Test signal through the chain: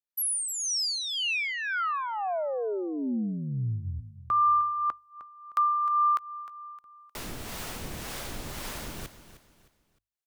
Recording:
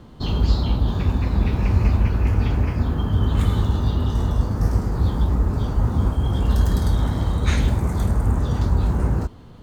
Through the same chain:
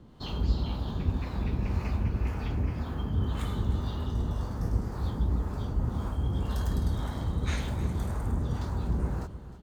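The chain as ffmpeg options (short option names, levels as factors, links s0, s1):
-filter_complex "[0:a]bandreject=f=50:t=h:w=6,bandreject=f=100:t=h:w=6,acrossover=split=500[s0][s1];[s0]aeval=exprs='val(0)*(1-0.5/2+0.5/2*cos(2*PI*1.9*n/s))':c=same[s2];[s1]aeval=exprs='val(0)*(1-0.5/2-0.5/2*cos(2*PI*1.9*n/s))':c=same[s3];[s2][s3]amix=inputs=2:normalize=0,asplit=2[s4][s5];[s5]aecho=0:1:308|616|924:0.2|0.0678|0.0231[s6];[s4][s6]amix=inputs=2:normalize=0,volume=0.447"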